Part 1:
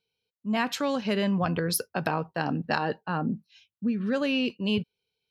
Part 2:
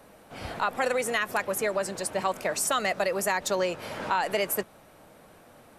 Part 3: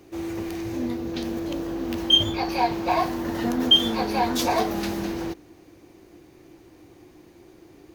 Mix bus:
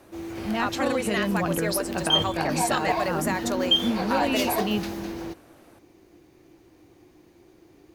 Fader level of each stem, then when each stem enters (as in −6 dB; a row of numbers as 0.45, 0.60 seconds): −1.0, −2.0, −4.5 decibels; 0.00, 0.00, 0.00 seconds